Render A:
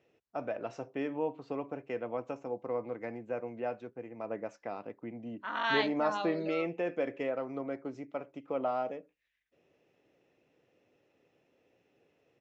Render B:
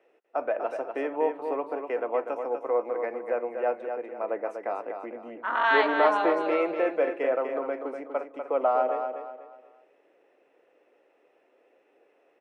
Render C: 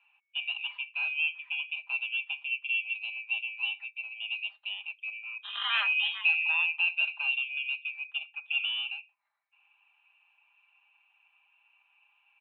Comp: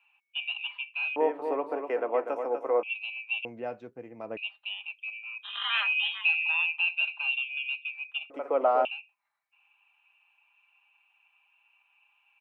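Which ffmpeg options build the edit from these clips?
-filter_complex "[1:a]asplit=2[a][b];[2:a]asplit=4[c][d][e][f];[c]atrim=end=1.162[g];[a]atrim=start=1.158:end=2.832[h];[d]atrim=start=2.828:end=3.452[i];[0:a]atrim=start=3.448:end=4.372[j];[e]atrim=start=4.368:end=8.302[k];[b]atrim=start=8.298:end=8.852[l];[f]atrim=start=8.848[m];[g][h]acrossfade=d=0.004:c1=hsin:c2=hsin[n];[n][i]acrossfade=d=0.004:c1=hsin:c2=hsin[o];[o][j]acrossfade=d=0.004:c1=hsin:c2=hsin[p];[p][k]acrossfade=d=0.004:c1=hsin:c2=hsin[q];[q][l]acrossfade=d=0.004:c1=hsin:c2=hsin[r];[r][m]acrossfade=d=0.004:c1=hsin:c2=hsin"

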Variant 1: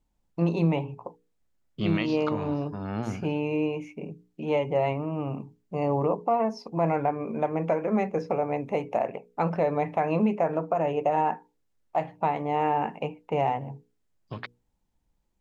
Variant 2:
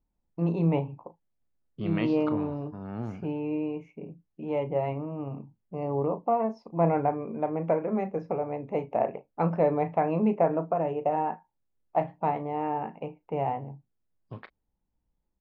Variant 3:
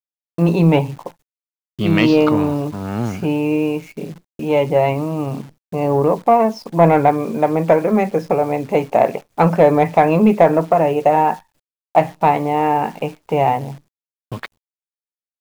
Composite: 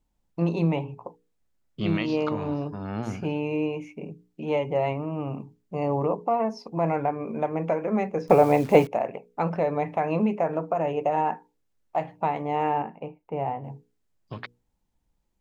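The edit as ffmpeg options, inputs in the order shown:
-filter_complex "[0:a]asplit=3[a][b][c];[a]atrim=end=8.282[d];[2:a]atrim=start=8.278:end=8.872[e];[b]atrim=start=8.868:end=12.822[f];[1:a]atrim=start=12.818:end=13.642[g];[c]atrim=start=13.638[h];[d][e]acrossfade=d=0.004:c1=hsin:c2=hsin[i];[i][f]acrossfade=d=0.004:c1=hsin:c2=hsin[j];[j][g]acrossfade=d=0.004:c1=hsin:c2=hsin[k];[k][h]acrossfade=d=0.004:c1=hsin:c2=hsin"

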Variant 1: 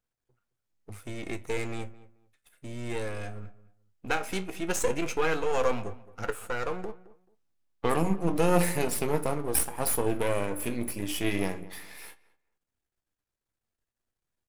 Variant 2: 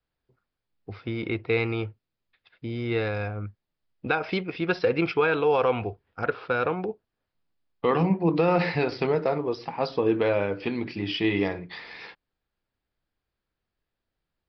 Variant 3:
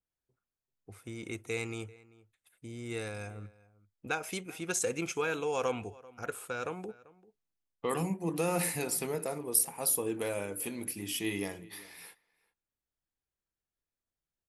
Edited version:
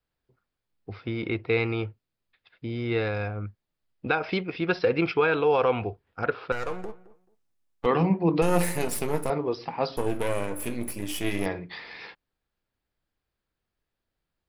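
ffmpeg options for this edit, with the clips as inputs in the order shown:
-filter_complex "[0:a]asplit=3[a][b][c];[1:a]asplit=4[d][e][f][g];[d]atrim=end=6.522[h];[a]atrim=start=6.518:end=7.862[i];[e]atrim=start=7.858:end=8.422[j];[b]atrim=start=8.418:end=9.302[k];[f]atrim=start=9.298:end=9.972[l];[c]atrim=start=9.968:end=11.462[m];[g]atrim=start=11.458[n];[h][i]acrossfade=d=0.004:c1=hsin:c2=hsin[o];[o][j]acrossfade=d=0.004:c1=hsin:c2=hsin[p];[p][k]acrossfade=d=0.004:c1=hsin:c2=hsin[q];[q][l]acrossfade=d=0.004:c1=hsin:c2=hsin[r];[r][m]acrossfade=d=0.004:c1=hsin:c2=hsin[s];[s][n]acrossfade=d=0.004:c1=hsin:c2=hsin"

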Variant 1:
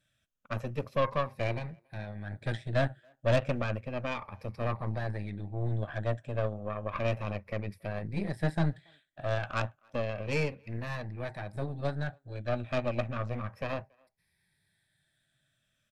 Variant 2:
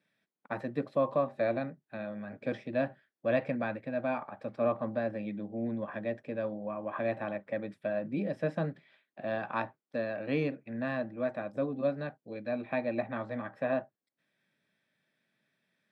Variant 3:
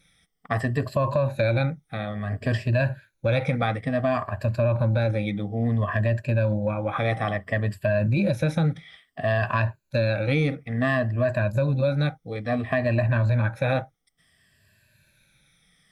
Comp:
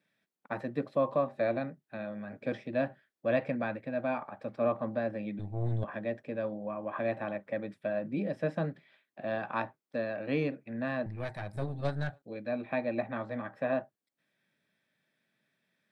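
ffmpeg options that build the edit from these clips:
-filter_complex "[0:a]asplit=2[a][b];[1:a]asplit=3[c][d][e];[c]atrim=end=5.392[f];[a]atrim=start=5.388:end=5.842[g];[d]atrim=start=5.838:end=11.062[h];[b]atrim=start=11.058:end=12.222[i];[e]atrim=start=12.218[j];[f][g]acrossfade=d=0.004:c1=hsin:c2=hsin[k];[k][h]acrossfade=d=0.004:c1=hsin:c2=hsin[l];[l][i]acrossfade=d=0.004:c1=hsin:c2=hsin[m];[m][j]acrossfade=d=0.004:c1=hsin:c2=hsin"

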